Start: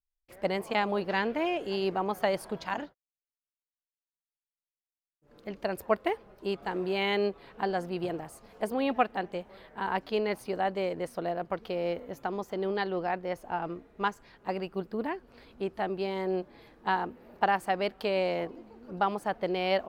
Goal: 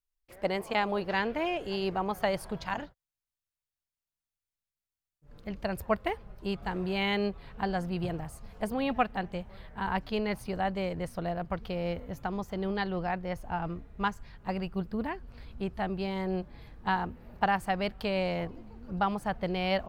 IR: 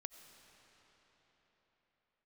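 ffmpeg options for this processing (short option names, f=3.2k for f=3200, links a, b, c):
-af "asubboost=boost=8:cutoff=120"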